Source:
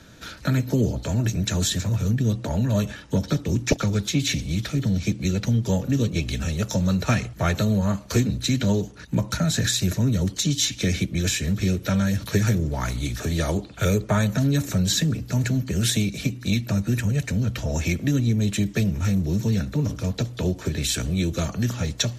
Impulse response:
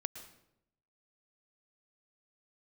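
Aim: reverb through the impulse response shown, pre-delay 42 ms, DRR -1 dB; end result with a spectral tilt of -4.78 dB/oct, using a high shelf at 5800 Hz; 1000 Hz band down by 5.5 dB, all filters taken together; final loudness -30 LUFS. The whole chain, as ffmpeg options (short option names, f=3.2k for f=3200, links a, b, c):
-filter_complex "[0:a]equalizer=f=1k:t=o:g=-8.5,highshelf=f=5.8k:g=5.5,asplit=2[a][b];[1:a]atrim=start_sample=2205,adelay=42[c];[b][c]afir=irnorm=-1:irlink=0,volume=2dB[d];[a][d]amix=inputs=2:normalize=0,volume=-10dB"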